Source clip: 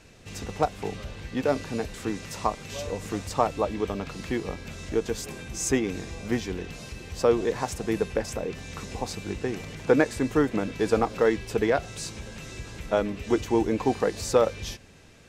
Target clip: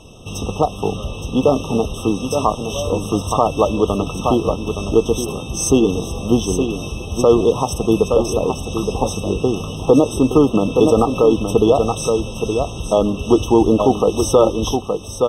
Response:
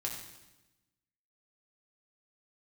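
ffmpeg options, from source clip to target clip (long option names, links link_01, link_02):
-af "aecho=1:1:869:0.398,alimiter=level_in=13dB:limit=-1dB:release=50:level=0:latency=1,afftfilt=real='re*eq(mod(floor(b*sr/1024/1300),2),0)':imag='im*eq(mod(floor(b*sr/1024/1300),2),0)':win_size=1024:overlap=0.75,volume=-1dB"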